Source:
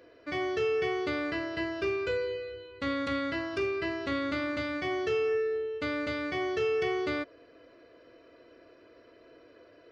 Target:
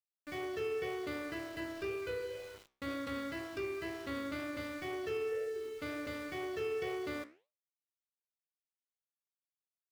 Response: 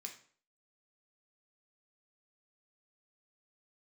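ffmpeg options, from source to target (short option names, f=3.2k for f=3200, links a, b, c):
-af "lowshelf=f=360:g=2,aeval=exprs='val(0)*gte(abs(val(0)),0.01)':c=same,flanger=delay=7.3:depth=8.4:regen=-80:speed=2:shape=sinusoidal,volume=-4.5dB"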